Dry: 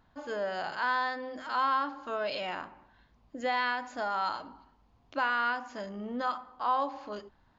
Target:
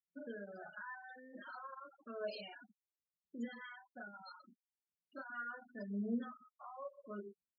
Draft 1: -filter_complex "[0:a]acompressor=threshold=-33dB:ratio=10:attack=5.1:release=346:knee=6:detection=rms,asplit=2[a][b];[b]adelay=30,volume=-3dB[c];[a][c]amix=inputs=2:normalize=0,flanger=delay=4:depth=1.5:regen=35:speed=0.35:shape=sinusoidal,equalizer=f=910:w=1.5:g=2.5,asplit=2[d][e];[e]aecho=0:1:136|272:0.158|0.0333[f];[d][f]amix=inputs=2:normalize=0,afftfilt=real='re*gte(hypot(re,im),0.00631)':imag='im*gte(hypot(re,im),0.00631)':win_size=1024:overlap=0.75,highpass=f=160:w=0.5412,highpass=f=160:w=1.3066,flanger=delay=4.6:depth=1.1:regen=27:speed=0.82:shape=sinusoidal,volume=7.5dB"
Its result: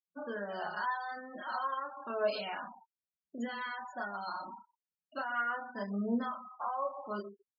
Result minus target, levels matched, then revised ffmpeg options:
compressor: peak gain reduction -6.5 dB; 1000 Hz band +5.5 dB
-filter_complex "[0:a]acompressor=threshold=-40dB:ratio=10:attack=5.1:release=346:knee=6:detection=rms,asplit=2[a][b];[b]adelay=30,volume=-3dB[c];[a][c]amix=inputs=2:normalize=0,flanger=delay=4:depth=1.5:regen=35:speed=0.35:shape=sinusoidal,equalizer=f=910:w=1.5:g=-8.5,asplit=2[d][e];[e]aecho=0:1:136|272:0.158|0.0333[f];[d][f]amix=inputs=2:normalize=0,afftfilt=real='re*gte(hypot(re,im),0.00631)':imag='im*gte(hypot(re,im),0.00631)':win_size=1024:overlap=0.75,highpass=f=160:w=0.5412,highpass=f=160:w=1.3066,flanger=delay=4.6:depth=1.1:regen=27:speed=0.82:shape=sinusoidal,volume=7.5dB"

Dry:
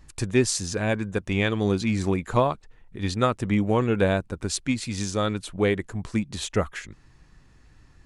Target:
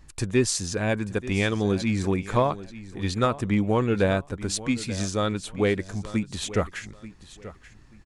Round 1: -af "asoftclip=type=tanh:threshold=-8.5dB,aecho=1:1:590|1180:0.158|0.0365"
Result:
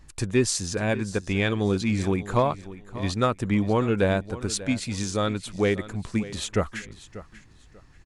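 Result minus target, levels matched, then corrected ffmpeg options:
echo 0.294 s early
-af "asoftclip=type=tanh:threshold=-8.5dB,aecho=1:1:884|1768:0.158|0.0365"

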